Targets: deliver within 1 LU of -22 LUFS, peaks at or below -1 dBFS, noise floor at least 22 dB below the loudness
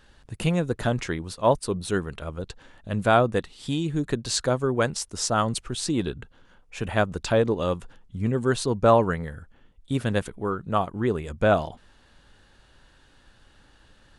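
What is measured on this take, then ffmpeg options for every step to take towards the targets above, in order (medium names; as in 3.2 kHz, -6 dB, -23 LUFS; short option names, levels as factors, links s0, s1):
loudness -25.5 LUFS; peak level -6.5 dBFS; loudness target -22.0 LUFS
-> -af "volume=1.5"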